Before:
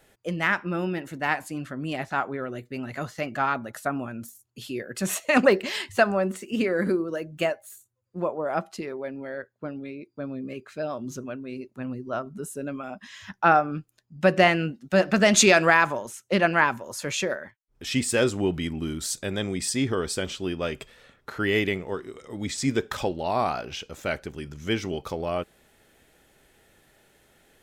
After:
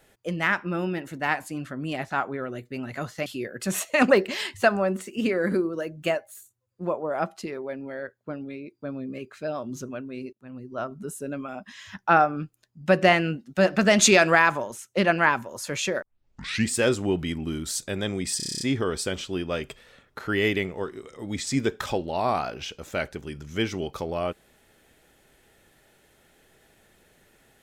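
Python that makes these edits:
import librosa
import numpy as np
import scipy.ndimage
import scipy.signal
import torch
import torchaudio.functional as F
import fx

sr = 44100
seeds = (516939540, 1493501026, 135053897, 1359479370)

y = fx.edit(x, sr, fx.cut(start_s=3.26, length_s=1.35),
    fx.fade_in_from(start_s=11.68, length_s=0.57, floor_db=-21.5),
    fx.tape_start(start_s=17.37, length_s=0.69),
    fx.stutter(start_s=19.72, slice_s=0.03, count=9), tone=tone)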